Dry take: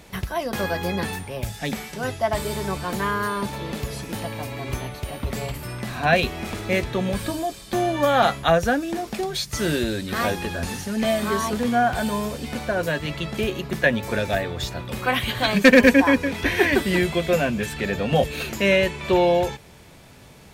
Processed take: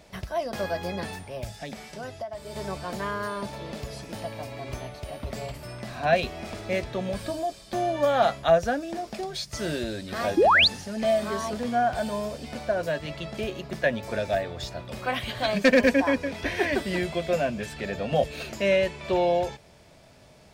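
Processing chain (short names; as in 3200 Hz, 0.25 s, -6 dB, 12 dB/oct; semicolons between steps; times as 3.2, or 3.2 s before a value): thirty-one-band EQ 630 Hz +10 dB, 5000 Hz +5 dB, 12500 Hz -9 dB; 1.55–2.56 compressor 6:1, threshold -26 dBFS, peak gain reduction 14.5 dB; 10.37–10.68 painted sound rise 290–4900 Hz -10 dBFS; gain -7.5 dB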